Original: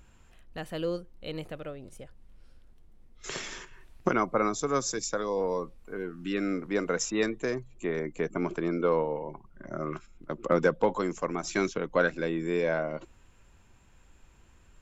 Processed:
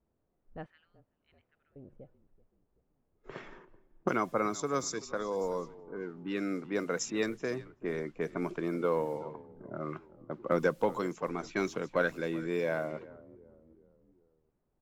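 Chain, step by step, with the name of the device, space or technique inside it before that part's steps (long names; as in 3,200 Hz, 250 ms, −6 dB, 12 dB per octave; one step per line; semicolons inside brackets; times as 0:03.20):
noise reduction from a noise print of the clip's start 23 dB
0:00.66–0:01.76: Butterworth high-pass 1,500 Hz 48 dB per octave
echo with shifted repeats 381 ms, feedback 53%, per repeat −37 Hz, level −19 dB
cassette deck with a dynamic noise filter (white noise bed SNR 29 dB; low-pass that shuts in the quiet parts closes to 420 Hz, open at −24.5 dBFS)
level −4 dB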